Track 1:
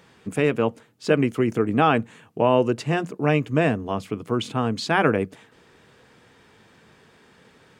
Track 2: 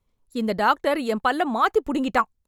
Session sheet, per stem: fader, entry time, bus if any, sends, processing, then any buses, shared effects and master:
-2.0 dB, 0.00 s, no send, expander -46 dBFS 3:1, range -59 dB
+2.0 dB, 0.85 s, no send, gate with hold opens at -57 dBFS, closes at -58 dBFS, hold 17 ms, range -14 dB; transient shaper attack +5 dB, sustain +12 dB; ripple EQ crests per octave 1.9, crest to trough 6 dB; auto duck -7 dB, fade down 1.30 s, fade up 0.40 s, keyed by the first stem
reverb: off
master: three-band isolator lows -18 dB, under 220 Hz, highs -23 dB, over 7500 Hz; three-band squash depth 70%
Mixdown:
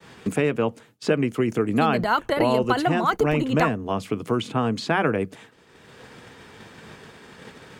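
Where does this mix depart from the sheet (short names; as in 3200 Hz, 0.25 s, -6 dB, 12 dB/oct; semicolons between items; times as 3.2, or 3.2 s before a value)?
stem 2: entry 0.85 s -> 1.45 s; master: missing three-band isolator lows -18 dB, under 220 Hz, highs -23 dB, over 7500 Hz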